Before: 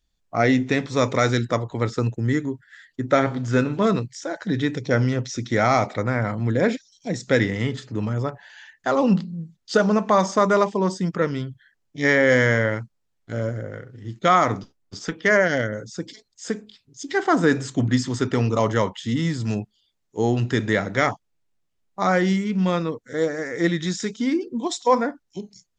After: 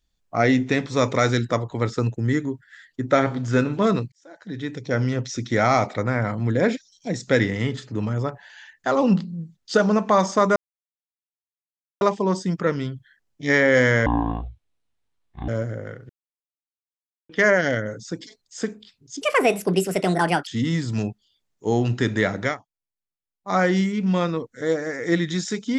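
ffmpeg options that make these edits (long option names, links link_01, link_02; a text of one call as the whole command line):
ffmpeg -i in.wav -filter_complex "[0:a]asplit=11[link_01][link_02][link_03][link_04][link_05][link_06][link_07][link_08][link_09][link_10][link_11];[link_01]atrim=end=4.12,asetpts=PTS-STARTPTS,afade=type=out:start_time=4.116:duration=0.004:curve=hsin[link_12];[link_02]atrim=start=4.12:end=10.56,asetpts=PTS-STARTPTS,afade=type=in:duration=1.16,afade=type=out:start_time=6.436:duration=0.004:curve=hsin,apad=pad_dur=1.45[link_13];[link_03]atrim=start=10.56:end=12.614,asetpts=PTS-STARTPTS,afade=type=in:duration=0.004:curve=hsin[link_14];[link_04]atrim=start=12.61:end=13.35,asetpts=PTS-STARTPTS,asetrate=22932,aresample=44100[link_15];[link_05]atrim=start=13.346:end=13.96,asetpts=PTS-STARTPTS,afade=type=out:start_time=0.61:duration=0.004:curve=hsin[link_16];[link_06]atrim=start=13.96:end=15.16,asetpts=PTS-STARTPTS,volume=0[link_17];[link_07]atrim=start=15.16:end=17.084,asetpts=PTS-STARTPTS,afade=type=in:duration=0.004:curve=hsin[link_18];[link_08]atrim=start=17.08:end=18.99,asetpts=PTS-STARTPTS,asetrate=67032,aresample=44100,atrim=end_sample=55415,asetpts=PTS-STARTPTS[link_19];[link_09]atrim=start=18.986:end=21.09,asetpts=PTS-STARTPTS,afade=type=out:start_time=1.964:duration=0.14:silence=0.1[link_20];[link_10]atrim=start=21.09:end=21.94,asetpts=PTS-STARTPTS,volume=-20dB[link_21];[link_11]atrim=start=21.94,asetpts=PTS-STARTPTS,afade=type=in:duration=0.14:silence=0.1[link_22];[link_12][link_13][link_14]concat=n=3:v=0:a=1[link_23];[link_23][link_15]acrossfade=duration=0.004:curve1=hsin:curve2=hsin[link_24];[link_16][link_17][link_18]concat=n=3:v=0:a=1[link_25];[link_24][link_25]acrossfade=duration=0.004:curve1=hsin:curve2=hsin[link_26];[link_26][link_19]acrossfade=duration=0.004:curve1=hsin:curve2=hsin[link_27];[link_20][link_21][link_22]concat=n=3:v=0:a=1[link_28];[link_27][link_28]acrossfade=duration=0.004:curve1=hsin:curve2=hsin" out.wav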